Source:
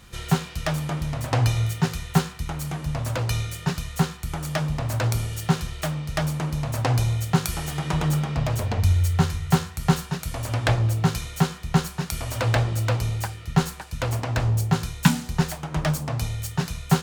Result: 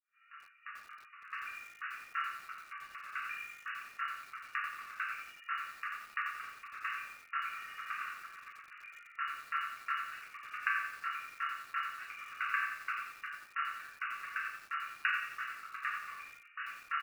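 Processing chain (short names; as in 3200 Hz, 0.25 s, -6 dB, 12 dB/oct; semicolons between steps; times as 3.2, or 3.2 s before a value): opening faded in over 2.23 s; reverb removal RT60 1.6 s; high shelf 2100 Hz -11 dB; 8.06–8.8 level quantiser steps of 12 dB; brick-wall FIR band-pass 1100–2900 Hz; early reflections 45 ms -17 dB, 78 ms -9 dB; shoebox room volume 76 m³, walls mixed, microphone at 1 m; lo-fi delay 89 ms, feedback 55%, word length 8-bit, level -8 dB; gain -2.5 dB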